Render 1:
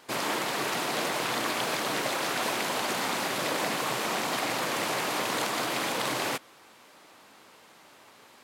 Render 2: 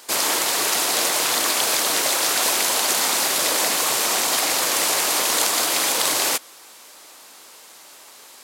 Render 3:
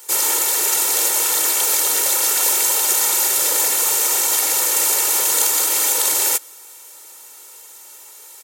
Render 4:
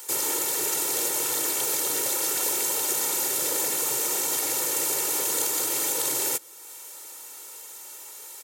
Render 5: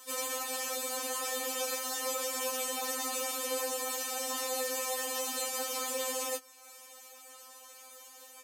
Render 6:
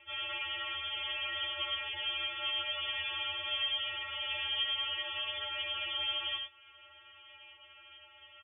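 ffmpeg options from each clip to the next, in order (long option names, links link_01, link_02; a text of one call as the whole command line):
ffmpeg -i in.wav -af "bass=frequency=250:gain=-11,treble=frequency=4000:gain=13,volume=5dB" out.wav
ffmpeg -i in.wav -filter_complex "[0:a]aecho=1:1:2.2:0.71,acrossover=split=580[link_01][link_02];[link_02]aexciter=amount=2.8:drive=5.6:freq=6300[link_03];[link_01][link_03]amix=inputs=2:normalize=0,volume=-4.5dB" out.wav
ffmpeg -i in.wav -filter_complex "[0:a]acrossover=split=410[link_01][link_02];[link_02]acompressor=threshold=-46dB:ratio=1.5[link_03];[link_01][link_03]amix=inputs=2:normalize=0,volume=2dB" out.wav
ffmpeg -i in.wav -af "lowpass=frequency=3200:poles=1,afftfilt=real='re*3.46*eq(mod(b,12),0)':imag='im*3.46*eq(mod(b,12),0)':win_size=2048:overlap=0.75" out.wav
ffmpeg -i in.wav -filter_complex "[0:a]asplit=2[link_01][link_02];[link_02]aecho=0:1:71|98:0.335|0.422[link_03];[link_01][link_03]amix=inputs=2:normalize=0,lowpass=frequency=3100:width_type=q:width=0.5098,lowpass=frequency=3100:width_type=q:width=0.6013,lowpass=frequency=3100:width_type=q:width=0.9,lowpass=frequency=3100:width_type=q:width=2.563,afreqshift=-3700" out.wav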